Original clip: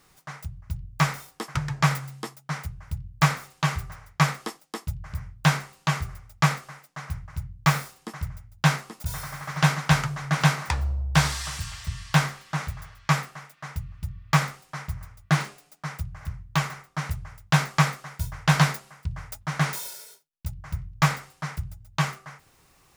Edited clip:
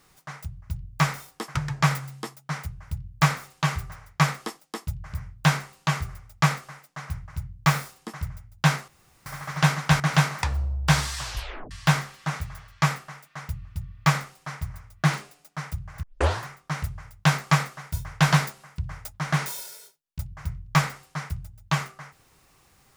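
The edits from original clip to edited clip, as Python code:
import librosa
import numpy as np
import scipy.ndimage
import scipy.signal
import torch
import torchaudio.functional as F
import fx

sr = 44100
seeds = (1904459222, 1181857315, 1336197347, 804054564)

y = fx.edit(x, sr, fx.room_tone_fill(start_s=8.88, length_s=0.38),
    fx.cut(start_s=10.0, length_s=0.27),
    fx.tape_stop(start_s=11.45, length_s=0.53),
    fx.tape_start(start_s=16.3, length_s=0.44), tone=tone)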